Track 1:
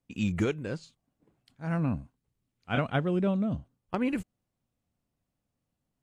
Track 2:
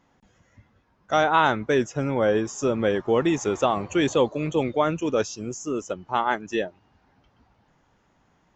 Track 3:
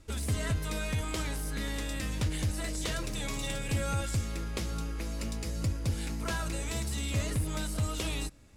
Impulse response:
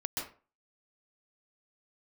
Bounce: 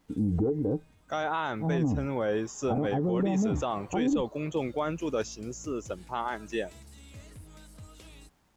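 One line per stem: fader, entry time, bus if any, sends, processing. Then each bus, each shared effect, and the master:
+1.5 dB, 0.00 s, no send, steep low-pass 1 kHz 36 dB/octave; bass shelf 96 Hz +11.5 dB; small resonant body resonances 300/440/770 Hz, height 14 dB, ringing for 90 ms
-6.0 dB, 0.00 s, no send, bit crusher 11-bit
-17.0 dB, 0.00 s, no send, auto duck -15 dB, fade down 0.50 s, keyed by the first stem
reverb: none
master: peak limiter -19.5 dBFS, peak gain reduction 12 dB

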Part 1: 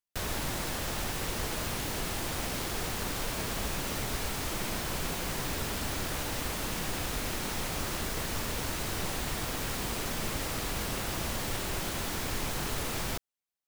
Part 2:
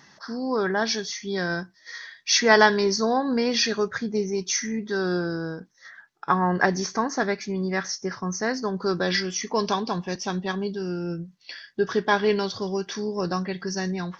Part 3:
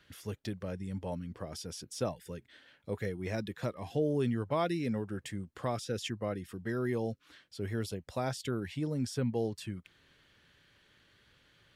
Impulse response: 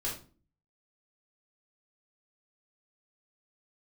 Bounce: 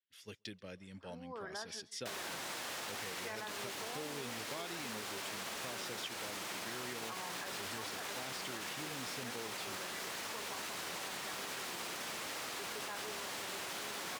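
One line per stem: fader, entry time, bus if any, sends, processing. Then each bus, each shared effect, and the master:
-1.5 dB, 1.90 s, bus A, no send, no echo send, none
-17.5 dB, 0.80 s, bus A, no send, echo send -23.5 dB, low-pass 2 kHz 12 dB/octave
-9.0 dB, 0.00 s, no bus, no send, echo send -22.5 dB, frequency weighting D
bus A: 0.0 dB, frequency weighting A; peak limiter -29 dBFS, peak gain reduction 9 dB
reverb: none
echo: feedback delay 136 ms, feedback 27%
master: expander -48 dBFS; compression, threshold -39 dBFS, peak gain reduction 8 dB

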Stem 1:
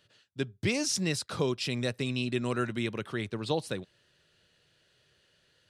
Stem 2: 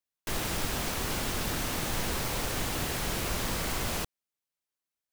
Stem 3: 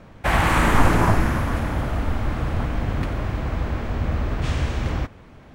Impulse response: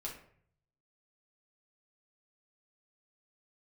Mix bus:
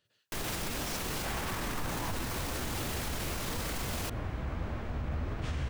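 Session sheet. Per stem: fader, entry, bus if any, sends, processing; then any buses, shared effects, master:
-11.0 dB, 0.00 s, no send, none
+2.0 dB, 0.05 s, no send, none
-6.0 dB, 1.00 s, no send, flange 1.6 Hz, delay 8.2 ms, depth 8.2 ms, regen +51%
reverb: none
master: peak limiter -26 dBFS, peak gain reduction 13.5 dB

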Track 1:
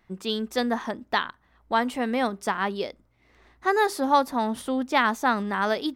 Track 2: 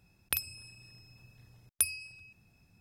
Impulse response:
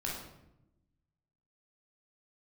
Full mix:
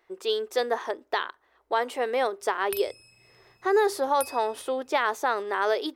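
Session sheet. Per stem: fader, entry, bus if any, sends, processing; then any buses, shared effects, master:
-1.0 dB, 0.00 s, no send, resonant low shelf 280 Hz -12 dB, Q 3
-4.0 dB, 2.40 s, no send, none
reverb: none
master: bass shelf 220 Hz -6 dB; peak limiter -13.5 dBFS, peak gain reduction 6 dB

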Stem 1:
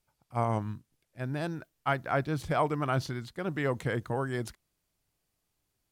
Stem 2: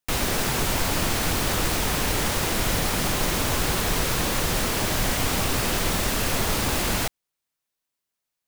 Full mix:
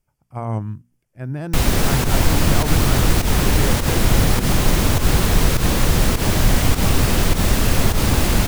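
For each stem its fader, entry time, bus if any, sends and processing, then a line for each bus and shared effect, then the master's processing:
+0.5 dB, 0.00 s, no send, peak limiter -20 dBFS, peak gain reduction 4 dB; peaking EQ 3.9 kHz -13.5 dB 0.34 oct; hum notches 60/120/180/240 Hz
+2.5 dB, 1.45 s, no send, volume shaper 102 bpm, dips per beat 1, -11 dB, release 112 ms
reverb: none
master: bass shelf 260 Hz +10.5 dB

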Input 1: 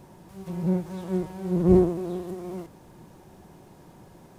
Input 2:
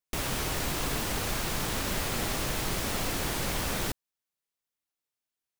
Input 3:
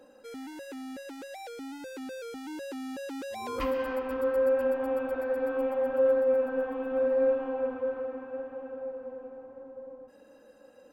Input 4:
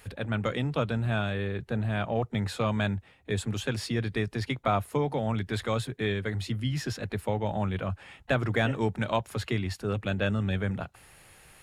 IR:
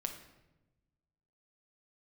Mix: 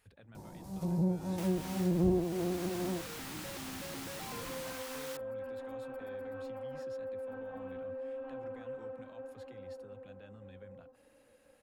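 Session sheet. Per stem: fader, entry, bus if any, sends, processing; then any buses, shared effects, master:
+1.0 dB, 0.35 s, no send, high-order bell 2 kHz -10 dB; band-stop 390 Hz
-12.0 dB, 1.25 s, no send, high-pass 900 Hz 24 dB/octave
-9.5 dB, 0.85 s, no send, peak limiter -27 dBFS, peak gain reduction 10.5 dB
-18.5 dB, 0.00 s, no send, compression 1.5:1, threshold -40 dBFS, peak gain reduction 7 dB; peak limiter -28 dBFS, peak gain reduction 9.5 dB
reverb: none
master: compression 2.5:1, threshold -30 dBFS, peak gain reduction 12 dB

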